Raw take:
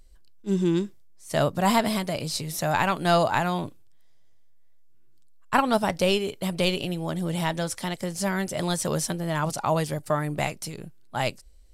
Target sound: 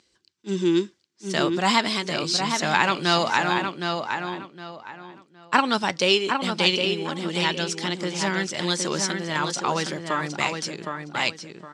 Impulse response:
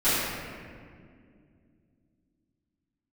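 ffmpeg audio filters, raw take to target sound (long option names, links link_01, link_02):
-filter_complex "[0:a]tiltshelf=frequency=1200:gain=-5.5,aphaser=in_gain=1:out_gain=1:delay=4.4:decay=0.22:speed=0.37:type=sinusoidal,highpass=frequency=110:width=0.5412,highpass=frequency=110:width=1.3066,equalizer=frequency=130:width_type=q:width=4:gain=-9,equalizer=frequency=350:width_type=q:width=4:gain=6,equalizer=frequency=650:width_type=q:width=4:gain=-7,lowpass=frequency=6600:width=0.5412,lowpass=frequency=6600:width=1.3066,asplit=2[link_01][link_02];[link_02]adelay=764,lowpass=frequency=3400:poles=1,volume=-5dB,asplit=2[link_03][link_04];[link_04]adelay=764,lowpass=frequency=3400:poles=1,volume=0.28,asplit=2[link_05][link_06];[link_06]adelay=764,lowpass=frequency=3400:poles=1,volume=0.28,asplit=2[link_07][link_08];[link_08]adelay=764,lowpass=frequency=3400:poles=1,volume=0.28[link_09];[link_01][link_03][link_05][link_07][link_09]amix=inputs=5:normalize=0,volume=3dB"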